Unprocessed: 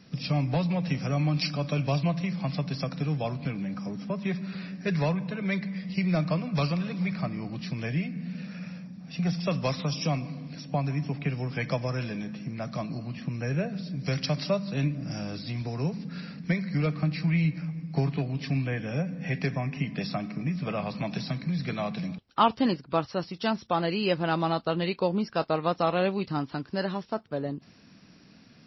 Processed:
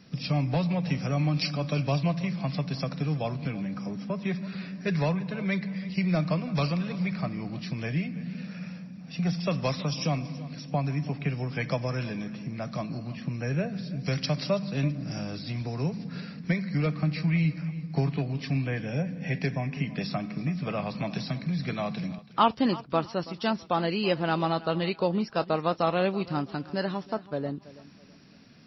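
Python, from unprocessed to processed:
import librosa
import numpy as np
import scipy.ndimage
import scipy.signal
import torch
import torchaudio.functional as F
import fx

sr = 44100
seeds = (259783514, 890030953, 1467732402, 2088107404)

y = fx.peak_eq(x, sr, hz=1200.0, db=-10.0, octaves=0.25, at=(18.84, 19.7))
y = fx.echo_feedback(y, sr, ms=329, feedback_pct=32, wet_db=-18.5)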